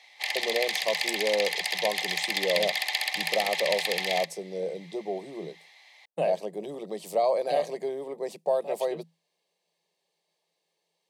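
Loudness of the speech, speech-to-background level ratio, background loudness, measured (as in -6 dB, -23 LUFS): -31.0 LUFS, -3.0 dB, -28.0 LUFS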